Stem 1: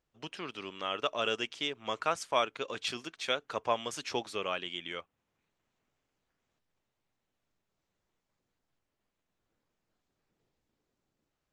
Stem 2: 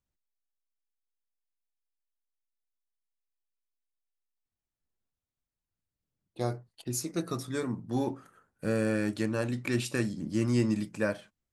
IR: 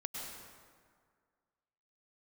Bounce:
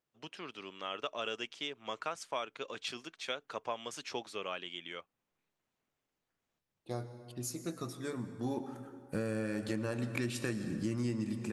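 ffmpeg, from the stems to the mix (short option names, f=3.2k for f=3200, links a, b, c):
-filter_complex "[0:a]highpass=110,volume=-4.5dB[a];[1:a]adelay=500,volume=-1.5dB,afade=t=in:st=8.3:d=0.57:silence=0.446684,asplit=2[b][c];[c]volume=-7.5dB[d];[2:a]atrim=start_sample=2205[e];[d][e]afir=irnorm=-1:irlink=0[f];[a][b][f]amix=inputs=3:normalize=0,acompressor=threshold=-32dB:ratio=5"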